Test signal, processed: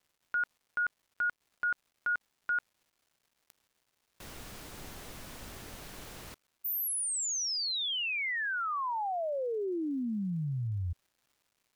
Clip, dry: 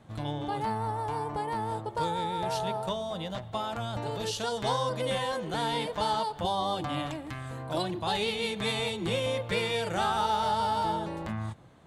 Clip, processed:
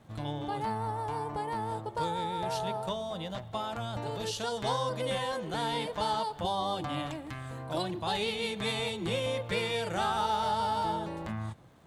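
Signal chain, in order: crackle 460/s -59 dBFS; gain -2 dB

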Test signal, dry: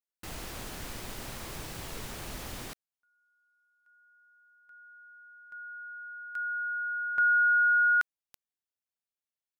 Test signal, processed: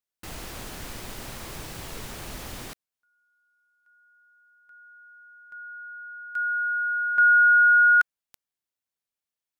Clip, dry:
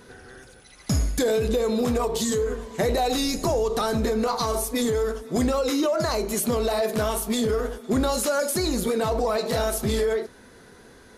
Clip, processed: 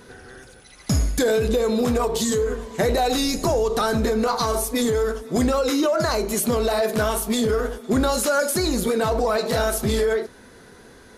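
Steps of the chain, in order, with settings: dynamic EQ 1500 Hz, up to +5 dB, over -42 dBFS, Q 4.4; gain +2.5 dB

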